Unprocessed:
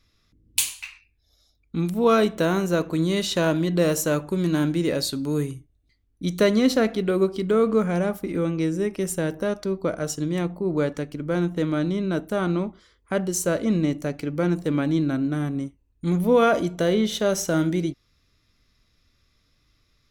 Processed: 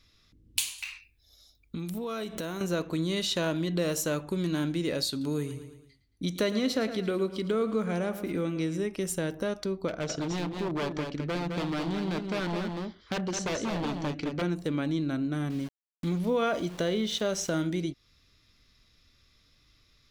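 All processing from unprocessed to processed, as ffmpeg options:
-filter_complex "[0:a]asettb=1/sr,asplit=3[s0][s1][s2];[s0]atrim=end=0.784[s3];[s1]atrim=start=0.78:end=2.61,asetpts=PTS-STARTPTS,afade=t=in:d=0.004:c=qsin,afade=t=out:st=1.826:d=0.004:c=qsin,highshelf=f=9700:g=10.5,acompressor=threshold=0.0282:ratio=6:attack=3.2:release=140:knee=1:detection=peak[s4];[s2]atrim=start=2.606[s5];[s3][s4]acrossfade=d=0.004:c1=hsin:c2=qsin[s6];[s6][s5]acrossfade=d=0.004:c1=qsin:c2=hsin,asettb=1/sr,asplit=3[s7][s8][s9];[s7]atrim=end=5.104[s10];[s8]atrim=start=5.1:end=8.84,asetpts=PTS-STARTPTS,afade=t=in:d=0.004:c=qsin,afade=t=out:st=3.736:d=0.004:c=qsin,highpass=48,aecho=1:1:111|222|333|444:0.211|0.093|0.0409|0.018,atrim=end_sample=164934[s11];[s9]atrim=start=8.836[s12];[s10][s11]acrossfade=d=0.004:c1=hsin:c2=qsin[s13];[s13][s12]acrossfade=d=0.004:c1=qsin:c2=hsin,asettb=1/sr,asplit=3[s14][s15][s16];[s14]atrim=end=9.884[s17];[s15]atrim=start=9.88:end=14.42,asetpts=PTS-STARTPTS,afade=t=in:d=0.004:c=qsin,afade=t=out:st=4.536:d=0.004:c=qsin,lowpass=f=5600:w=0.5412,lowpass=f=5600:w=1.3066,aeval=exprs='0.0841*(abs(mod(val(0)/0.0841+3,4)-2)-1)':c=same,aecho=1:1:211:0.501,atrim=end_sample=200214[s18];[s16]atrim=start=14.416[s19];[s17][s18]acrossfade=d=0.004:c1=hsin:c2=qsin[s20];[s20][s19]acrossfade=d=0.004:c1=qsin:c2=hsin,asettb=1/sr,asplit=3[s21][s22][s23];[s21]atrim=end=15.504[s24];[s22]atrim=start=15.5:end=17.53,asetpts=PTS-STARTPTS,afade=t=in:d=0.004:c=qsin,afade=t=out:st=2.026:d=0.004:c=qsin,lowpass=8400,aeval=exprs='val(0)*gte(abs(val(0)),0.0112)':c=same[s25];[s23]atrim=start=17.526[s26];[s24][s25]acrossfade=d=0.004:c1=hsin:c2=qsin[s27];[s27][s26]acrossfade=d=0.004:c1=qsin:c2=hsin,equalizer=f=3700:t=o:w=1.5:g=5,acompressor=threshold=0.0251:ratio=2"

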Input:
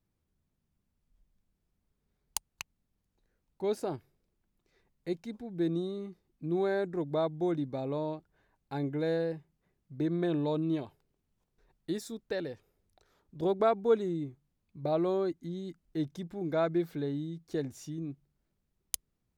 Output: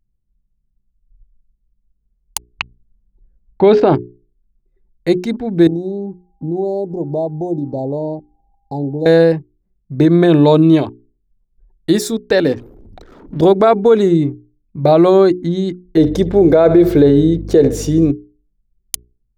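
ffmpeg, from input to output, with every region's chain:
-filter_complex "[0:a]asettb=1/sr,asplit=3[s0][s1][s2];[s0]atrim=end=2.504[s3];[s1]atrim=start=2.5:end=3.95,asetpts=PTS-STARTPTS,afade=t=in:d=0.004:c=qsin,afade=t=out:st=1.446:d=0.004:c=qsin,lowpass=f=3600:w=0.5412,lowpass=f=3600:w=1.3066,acontrast=61[s4];[s2]atrim=start=3.946[s5];[s3][s4]acrossfade=d=0.004:c1=hsin:c2=qsin[s6];[s6][s5]acrossfade=d=0.004:c1=qsin:c2=hsin,asettb=1/sr,asplit=3[s7][s8][s9];[s7]atrim=end=5.674[s10];[s8]atrim=start=5.67:end=9.06,asetpts=PTS-STARTPTS,afade=t=in:d=0.004:c=qsin,afade=t=out:st=3.386:d=0.004:c=qsin,acompressor=threshold=0.00501:ratio=2:attack=3.2:release=140:knee=1:detection=peak,aeval=exprs='val(0)+0.000447*sin(2*PI*800*n/s)':c=same,asuperstop=centerf=2000:order=12:qfactor=0.54[s11];[s9]atrim=start=9.056[s12];[s10][s11]acrossfade=d=0.004:c1=hsin:c2=qsin[s13];[s13][s12]acrossfade=d=0.004:c1=qsin:c2=hsin,asettb=1/sr,asplit=3[s14][s15][s16];[s14]atrim=end=12.454[s17];[s15]atrim=start=12.45:end=13.41,asetpts=PTS-STARTPTS,afade=t=in:d=0.004:c=qsin,afade=t=out:st=0.956:d=0.004:c=qsin,aeval=exprs='val(0)+0.5*0.00158*sgn(val(0))':c=same,equalizer=f=280:t=o:w=0.75:g=8[s18];[s16]atrim=start=13.406[s19];[s17][s18]acrossfade=d=0.004:c1=hsin:c2=qsin[s20];[s20][s19]acrossfade=d=0.004:c1=qsin:c2=hsin,asettb=1/sr,asplit=3[s21][s22][s23];[s21]atrim=end=15.974[s24];[s22]atrim=start=15.97:end=18.11,asetpts=PTS-STARTPTS,afade=t=in:d=0.004:c=qsin,afade=t=out:st=2.136:d=0.004:c=qsin,equalizer=f=470:t=o:w=0.97:g=12.5,aeval=exprs='val(0)+0.00447*(sin(2*PI*50*n/s)+sin(2*PI*2*50*n/s)/2+sin(2*PI*3*50*n/s)/3+sin(2*PI*4*50*n/s)/4+sin(2*PI*5*50*n/s)/5)':c=same,aecho=1:1:70|140|210|280:0.119|0.0594|0.0297|0.0149,atrim=end_sample=94374[s25];[s23]atrim=start=18.106[s26];[s24][s25]acrossfade=d=0.004:c1=hsin:c2=qsin[s27];[s27][s26]acrossfade=d=0.004:c1=qsin:c2=hsin,anlmdn=0.000398,bandreject=f=60:t=h:w=6,bandreject=f=120:t=h:w=6,bandreject=f=180:t=h:w=6,bandreject=f=240:t=h:w=6,bandreject=f=300:t=h:w=6,bandreject=f=360:t=h:w=6,bandreject=f=420:t=h:w=6,alimiter=level_in=14.1:limit=0.891:release=50:level=0:latency=1,volume=0.891"

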